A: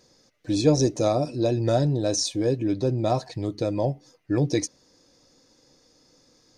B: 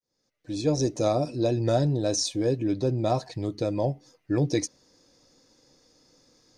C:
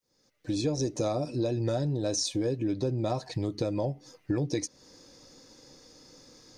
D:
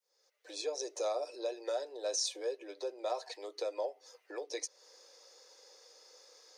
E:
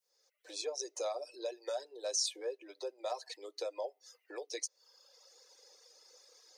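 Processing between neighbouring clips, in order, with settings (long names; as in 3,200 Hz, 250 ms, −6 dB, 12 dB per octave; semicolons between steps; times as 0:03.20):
fade in at the beginning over 1.10 s; level −1.5 dB
notch filter 680 Hz, Q 12; downward compressor 4 to 1, threshold −35 dBFS, peak gain reduction 14 dB; level +7 dB
Butterworth high-pass 420 Hz 48 dB per octave; level −3.5 dB
reverb reduction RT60 1.2 s; high-shelf EQ 4,500 Hz +5.5 dB; level −2 dB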